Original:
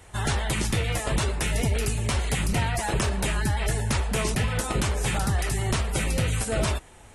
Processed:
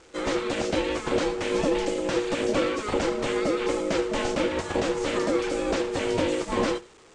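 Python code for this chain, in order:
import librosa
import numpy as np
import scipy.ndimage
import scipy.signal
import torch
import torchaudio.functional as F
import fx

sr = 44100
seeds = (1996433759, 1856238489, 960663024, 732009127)

y = fx.delta_mod(x, sr, bps=64000, step_db=-38.0)
y = scipy.signal.sosfilt(scipy.signal.butter(6, 7800.0, 'lowpass', fs=sr, output='sos'), y)
y = y * np.sin(2.0 * np.pi * 420.0 * np.arange(len(y)) / sr)
y = y + 10.0 ** (-14.0 / 20.0) * np.pad(y, (int(85 * sr / 1000.0), 0))[:len(y)]
y = fx.upward_expand(y, sr, threshold_db=-43.0, expansion=1.5)
y = y * 10.0 ** (3.5 / 20.0)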